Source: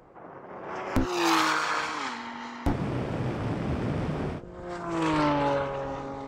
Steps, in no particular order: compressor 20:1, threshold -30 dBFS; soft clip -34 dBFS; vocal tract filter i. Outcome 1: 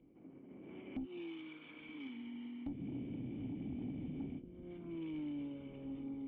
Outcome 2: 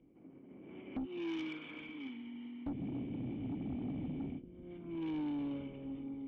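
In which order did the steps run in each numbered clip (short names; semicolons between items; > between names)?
compressor > vocal tract filter > soft clip; vocal tract filter > compressor > soft clip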